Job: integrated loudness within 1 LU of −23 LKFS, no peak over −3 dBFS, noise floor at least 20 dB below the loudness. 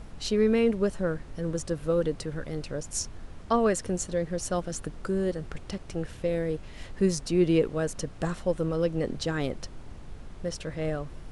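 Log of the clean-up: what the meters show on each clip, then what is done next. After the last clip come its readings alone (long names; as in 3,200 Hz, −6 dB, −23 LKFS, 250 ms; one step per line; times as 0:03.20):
background noise floor −45 dBFS; target noise floor −50 dBFS; integrated loudness −29.5 LKFS; sample peak −12.5 dBFS; target loudness −23.0 LKFS
→ noise reduction from a noise print 6 dB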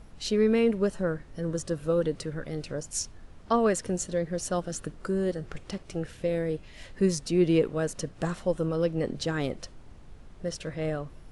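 background noise floor −50 dBFS; integrated loudness −29.5 LKFS; sample peak −13.0 dBFS; target loudness −23.0 LKFS
→ level +6.5 dB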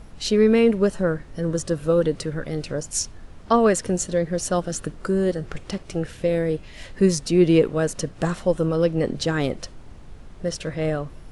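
integrated loudness −23.0 LKFS; sample peak −6.5 dBFS; background noise floor −43 dBFS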